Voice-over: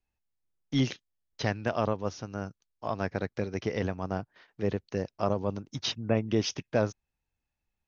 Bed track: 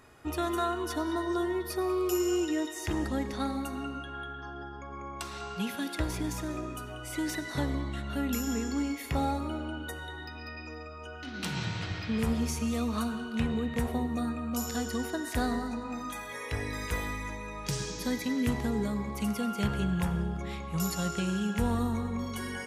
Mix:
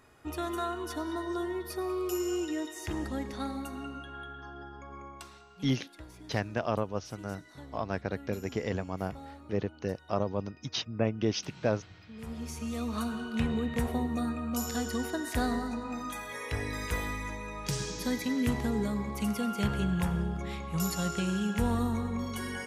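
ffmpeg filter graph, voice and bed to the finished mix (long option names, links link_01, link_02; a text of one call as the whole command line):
ffmpeg -i stem1.wav -i stem2.wav -filter_complex "[0:a]adelay=4900,volume=-2dB[link_01];[1:a]volume=13.5dB,afade=type=out:start_time=4.96:duration=0.48:silence=0.211349,afade=type=in:start_time=12.14:duration=1.12:silence=0.141254[link_02];[link_01][link_02]amix=inputs=2:normalize=0" out.wav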